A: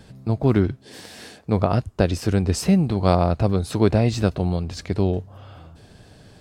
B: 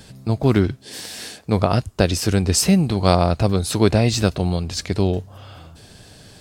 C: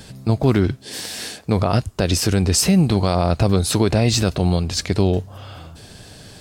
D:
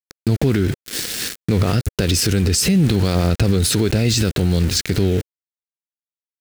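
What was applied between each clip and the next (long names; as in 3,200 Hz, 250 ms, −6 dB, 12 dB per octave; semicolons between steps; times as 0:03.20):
high-shelf EQ 2,700 Hz +10.5 dB; level +1.5 dB
brickwall limiter −10.5 dBFS, peak gain reduction 9 dB; level +3.5 dB
centre clipping without the shift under −27 dBFS; flat-topped bell 830 Hz −9.5 dB 1.2 octaves; brickwall limiter −16.5 dBFS, peak gain reduction 10.5 dB; level +8 dB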